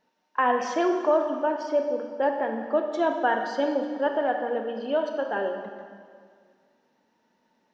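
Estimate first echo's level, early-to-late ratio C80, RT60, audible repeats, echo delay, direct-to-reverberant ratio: no echo audible, 7.0 dB, 2.0 s, no echo audible, no echo audible, 4.5 dB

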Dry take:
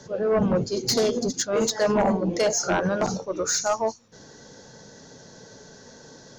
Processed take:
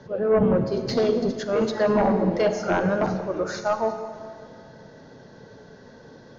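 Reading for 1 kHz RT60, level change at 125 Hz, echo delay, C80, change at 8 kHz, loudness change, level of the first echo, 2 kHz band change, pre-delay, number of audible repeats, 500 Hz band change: 2.2 s, +2.0 dB, no echo audible, 9.5 dB, −17.5 dB, +0.5 dB, no echo audible, 0.0 dB, 34 ms, no echo audible, +1.5 dB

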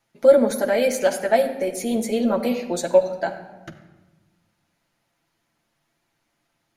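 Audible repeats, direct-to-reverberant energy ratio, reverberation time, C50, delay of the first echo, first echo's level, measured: no echo audible, 1.5 dB, 1.2 s, 10.0 dB, no echo audible, no echo audible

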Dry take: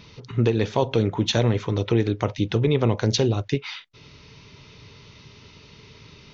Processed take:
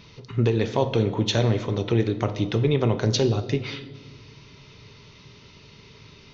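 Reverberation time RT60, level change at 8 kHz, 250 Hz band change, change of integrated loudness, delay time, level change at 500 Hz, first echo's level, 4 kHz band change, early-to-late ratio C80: 1.4 s, can't be measured, −1.0 dB, −1.0 dB, no echo audible, −0.5 dB, no echo audible, −1.0 dB, 14.5 dB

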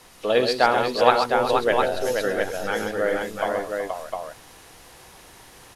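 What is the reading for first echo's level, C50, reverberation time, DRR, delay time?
−15.0 dB, no reverb audible, no reverb audible, no reverb audible, 56 ms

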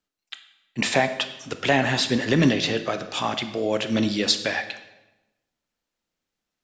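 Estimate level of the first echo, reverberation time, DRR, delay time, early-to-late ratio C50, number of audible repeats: no echo audible, 1.0 s, 9.0 dB, no echo audible, 11.5 dB, no echo audible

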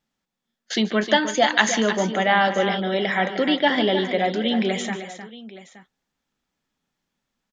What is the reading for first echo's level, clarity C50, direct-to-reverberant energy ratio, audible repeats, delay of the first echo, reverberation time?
−16.0 dB, no reverb audible, no reverb audible, 3, 147 ms, no reverb audible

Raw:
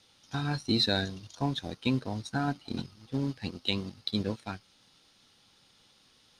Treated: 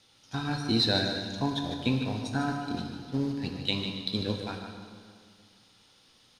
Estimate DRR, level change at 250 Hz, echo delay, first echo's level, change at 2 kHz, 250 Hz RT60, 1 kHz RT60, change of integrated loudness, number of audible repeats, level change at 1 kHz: 2.0 dB, +2.0 dB, 150 ms, −8.0 dB, +2.0 dB, 2.0 s, 2.0 s, +2.0 dB, 2, +2.0 dB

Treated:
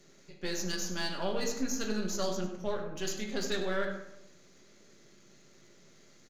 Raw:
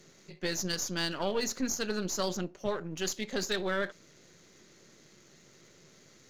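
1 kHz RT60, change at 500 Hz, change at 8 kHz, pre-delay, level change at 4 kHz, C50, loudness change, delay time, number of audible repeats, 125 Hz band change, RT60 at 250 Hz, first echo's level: 0.80 s, −1.0 dB, −3.0 dB, 4 ms, −3.0 dB, 5.5 dB, −2.0 dB, 98 ms, 1, −1.5 dB, 1.0 s, −12.5 dB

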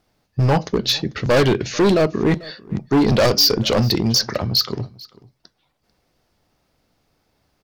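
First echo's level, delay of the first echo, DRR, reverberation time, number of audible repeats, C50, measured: −22.0 dB, 443 ms, no reverb audible, no reverb audible, 1, no reverb audible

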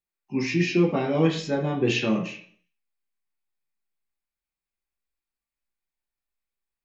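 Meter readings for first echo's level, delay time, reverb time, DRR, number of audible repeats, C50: no echo audible, no echo audible, 0.50 s, −2.5 dB, no echo audible, 8.0 dB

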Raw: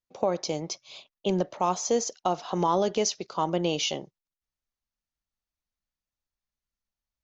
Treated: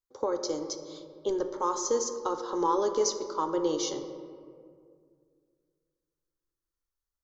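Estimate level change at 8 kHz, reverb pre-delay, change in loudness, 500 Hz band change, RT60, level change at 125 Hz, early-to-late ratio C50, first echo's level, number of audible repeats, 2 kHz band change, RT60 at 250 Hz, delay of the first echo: can't be measured, 4 ms, −2.0 dB, −1.0 dB, 2.2 s, −16.0 dB, 9.0 dB, no echo audible, no echo audible, −8.5 dB, 2.7 s, no echo audible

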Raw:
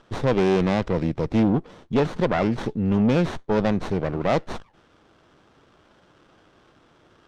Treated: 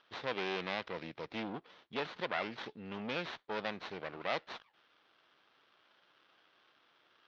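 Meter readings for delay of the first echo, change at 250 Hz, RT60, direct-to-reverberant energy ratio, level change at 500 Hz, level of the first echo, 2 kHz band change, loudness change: no echo audible, −23.0 dB, no reverb audible, no reverb audible, −17.5 dB, no echo audible, −7.0 dB, −17.0 dB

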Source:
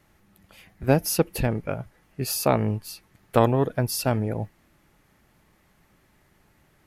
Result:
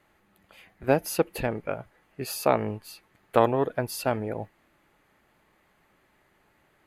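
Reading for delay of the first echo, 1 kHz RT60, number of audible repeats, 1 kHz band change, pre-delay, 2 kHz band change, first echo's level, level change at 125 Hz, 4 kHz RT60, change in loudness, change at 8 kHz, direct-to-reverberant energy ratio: no echo audible, no reverb audible, no echo audible, 0.0 dB, no reverb audible, −0.5 dB, no echo audible, −9.0 dB, no reverb audible, −3.0 dB, −7.0 dB, no reverb audible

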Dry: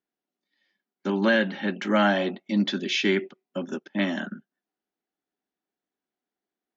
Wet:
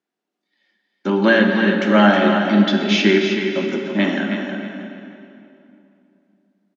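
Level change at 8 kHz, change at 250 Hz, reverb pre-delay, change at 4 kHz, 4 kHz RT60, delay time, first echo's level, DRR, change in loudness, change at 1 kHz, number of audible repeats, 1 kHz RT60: can't be measured, +10.0 dB, 5 ms, +7.5 dB, 2.1 s, 317 ms, −7.5 dB, 1.0 dB, +8.5 dB, +9.0 dB, 3, 2.7 s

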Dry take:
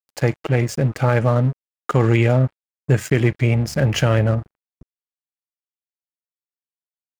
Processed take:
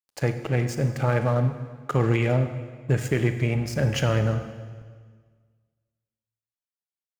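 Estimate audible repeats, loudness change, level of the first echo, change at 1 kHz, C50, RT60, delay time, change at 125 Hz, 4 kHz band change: no echo audible, −6.0 dB, no echo audible, −5.5 dB, 9.5 dB, 1.7 s, no echo audible, −5.5 dB, −5.5 dB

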